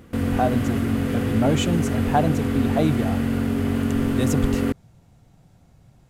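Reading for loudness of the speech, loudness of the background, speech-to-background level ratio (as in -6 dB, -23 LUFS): -25.5 LUFS, -23.5 LUFS, -2.0 dB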